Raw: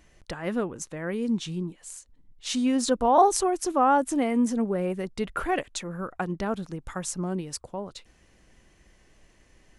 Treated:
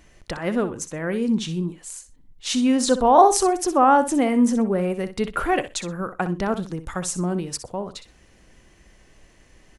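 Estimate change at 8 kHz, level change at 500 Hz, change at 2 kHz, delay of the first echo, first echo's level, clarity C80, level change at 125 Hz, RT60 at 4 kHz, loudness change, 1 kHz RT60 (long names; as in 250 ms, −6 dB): +5.5 dB, +5.0 dB, +5.5 dB, 62 ms, −12.0 dB, no reverb audible, +5.5 dB, no reverb audible, +5.0 dB, no reverb audible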